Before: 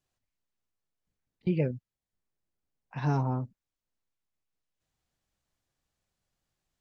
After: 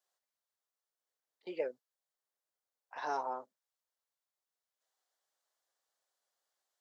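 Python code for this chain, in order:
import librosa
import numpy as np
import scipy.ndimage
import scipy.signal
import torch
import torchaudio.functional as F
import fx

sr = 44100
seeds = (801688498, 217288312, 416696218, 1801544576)

y = scipy.signal.sosfilt(scipy.signal.butter(4, 490.0, 'highpass', fs=sr, output='sos'), x)
y = fx.peak_eq(y, sr, hz=2500.0, db=-8.5, octaves=0.45)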